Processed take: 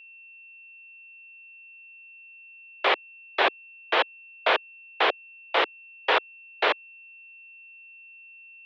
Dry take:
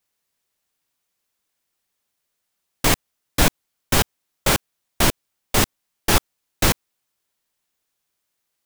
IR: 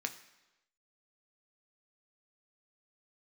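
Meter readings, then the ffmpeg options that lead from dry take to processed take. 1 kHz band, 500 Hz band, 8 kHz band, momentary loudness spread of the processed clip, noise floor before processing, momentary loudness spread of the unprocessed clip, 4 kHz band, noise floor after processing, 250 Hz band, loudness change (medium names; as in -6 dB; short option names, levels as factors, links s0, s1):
+0.5 dB, -1.0 dB, under -35 dB, 21 LU, -77 dBFS, 5 LU, -4.0 dB, -49 dBFS, -16.5 dB, -4.5 dB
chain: -af "highpass=f=340:t=q:w=0.5412,highpass=f=340:t=q:w=1.307,lowpass=f=3400:t=q:w=0.5176,lowpass=f=3400:t=q:w=0.7071,lowpass=f=3400:t=q:w=1.932,afreqshift=95,aeval=exprs='val(0)+0.00501*sin(2*PI*2700*n/s)':c=same"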